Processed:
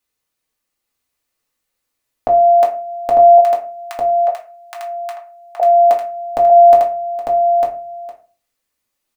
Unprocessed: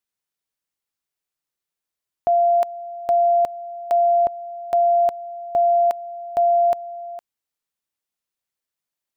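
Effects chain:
0:03.38–0:05.60: high-pass filter 1,200 Hz 24 dB per octave
single-tap delay 900 ms −3.5 dB
convolution reverb RT60 0.35 s, pre-delay 3 ms, DRR −2.5 dB
level +6 dB

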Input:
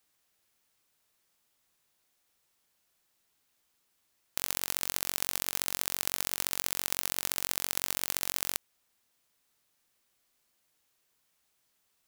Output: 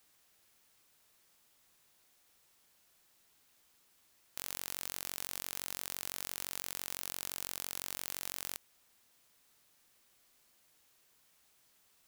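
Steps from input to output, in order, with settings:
0:07.02–0:07.89: parametric band 1,900 Hz −2 dB 0.23 octaves
soft clipping −18 dBFS, distortion −9 dB
level +5.5 dB

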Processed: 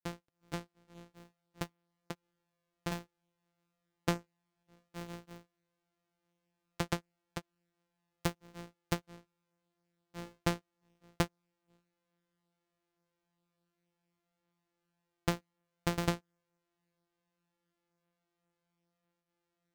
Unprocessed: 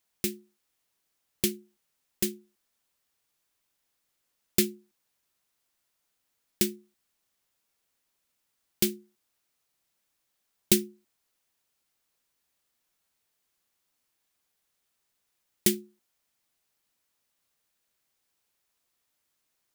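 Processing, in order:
samples sorted by size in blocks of 256 samples
bad sample-rate conversion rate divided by 2×, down filtered, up hold
granular cloud 227 ms, grains 15 per second, spray 801 ms, pitch spread up and down by 0 semitones
level −2.5 dB

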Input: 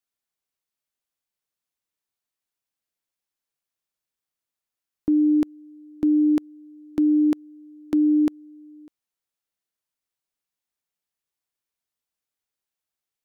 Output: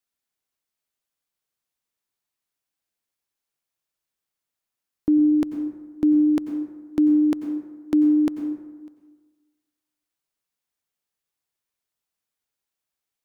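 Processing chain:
dense smooth reverb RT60 1.3 s, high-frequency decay 0.45×, pre-delay 80 ms, DRR 8 dB
level +1.5 dB

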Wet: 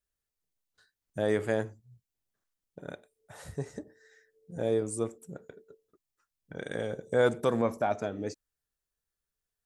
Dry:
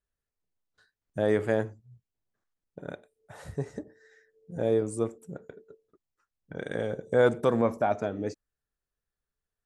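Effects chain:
high-shelf EQ 3,400 Hz +8 dB
level −3 dB

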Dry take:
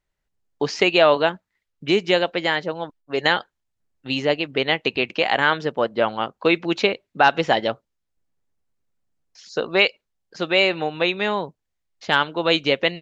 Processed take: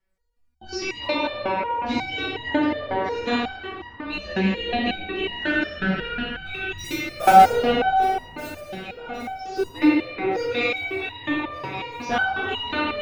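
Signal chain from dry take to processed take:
0:05.45–0:06.79: time-frequency box erased 320–1,300 Hz
in parallel at +3 dB: downward compressor 16 to 1, threshold −28 dBFS, peak gain reduction 19 dB
on the sum: frequency shifter −72 Hz
phase shifter 0.41 Hz, delay 1.2 ms, feedback 60%
0:06.76–0:07.50: log-companded quantiser 4 bits
on a send: delay that swaps between a low-pass and a high-pass 589 ms, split 2,000 Hz, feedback 71%, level −7.5 dB
on the sum: rectangular room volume 120 cubic metres, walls hard, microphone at 0.78 metres
step-sequenced resonator 5.5 Hz 190–950 Hz

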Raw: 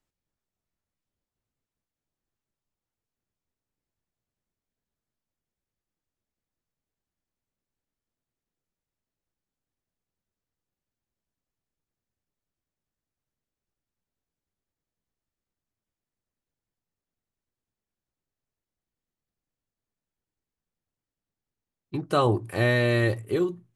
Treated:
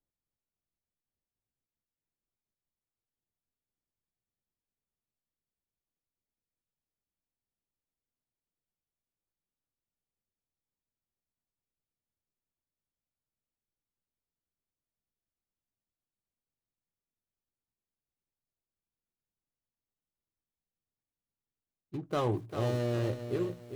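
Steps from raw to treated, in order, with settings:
running median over 25 samples
feedback echo at a low word length 397 ms, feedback 35%, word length 8 bits, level −9 dB
level −7.5 dB

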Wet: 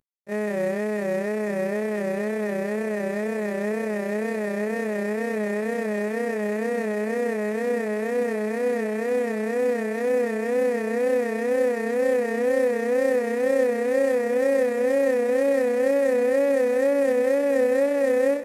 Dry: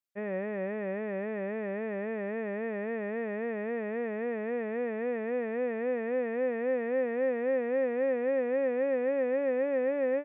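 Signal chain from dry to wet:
variable-slope delta modulation 64 kbit/s
feedback delay with all-pass diffusion 572 ms, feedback 68%, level −16 dB
time stretch by overlap-add 1.8×, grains 64 ms
level +9 dB

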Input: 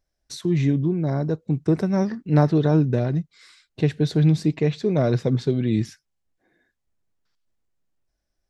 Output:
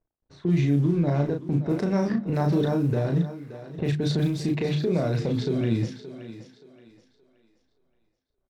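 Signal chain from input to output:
mu-law and A-law mismatch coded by A
low-pass that shuts in the quiet parts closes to 860 Hz, open at −15 dBFS
mains-hum notches 50/100/150/200/250/300/350 Hz
downward compressor, threshold −22 dBFS, peak gain reduction 8.5 dB
brickwall limiter −22.5 dBFS, peak gain reduction 9.5 dB
double-tracking delay 35 ms −4 dB
feedback echo with a high-pass in the loop 574 ms, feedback 33%, high-pass 240 Hz, level −12 dB
level +5.5 dB

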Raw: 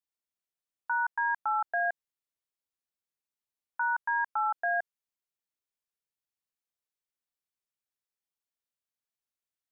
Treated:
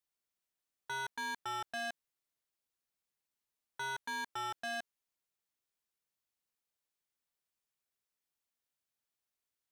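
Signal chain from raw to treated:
soft clipping −39 dBFS, distortion −6 dB
level +2 dB

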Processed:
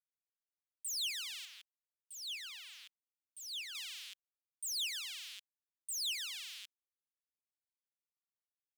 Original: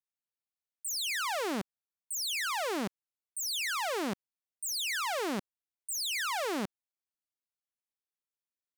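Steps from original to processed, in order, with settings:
brickwall limiter −35 dBFS, peak gain reduction 7 dB
0:01.45–0:03.75: high-shelf EQ 3,800 Hz −11.5 dB
bit reduction 10 bits
four-pole ladder high-pass 2,600 Hz, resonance 45%
level +7.5 dB

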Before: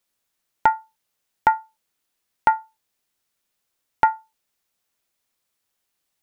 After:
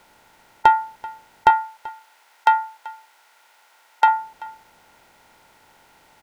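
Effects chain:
compressor on every frequency bin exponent 0.6
soft clipping −7.5 dBFS, distortion −17 dB
0:01.50–0:04.08: high-pass filter 770 Hz 12 dB per octave
single-tap delay 385 ms −20.5 dB
level +4.5 dB

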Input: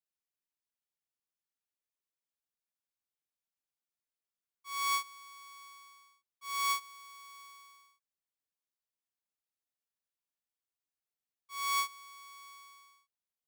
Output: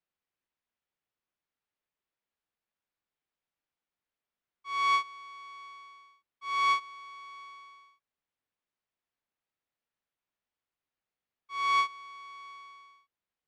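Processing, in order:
low-pass filter 2,900 Hz 12 dB per octave
level +7 dB

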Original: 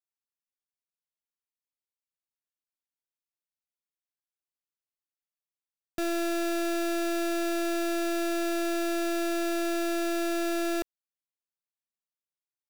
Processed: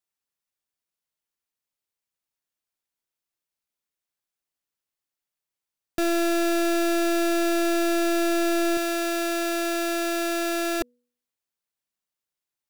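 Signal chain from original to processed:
0:08.77–0:10.81: low-shelf EQ 380 Hz −8.5 dB
hum removal 243.6 Hz, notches 2
level +6 dB

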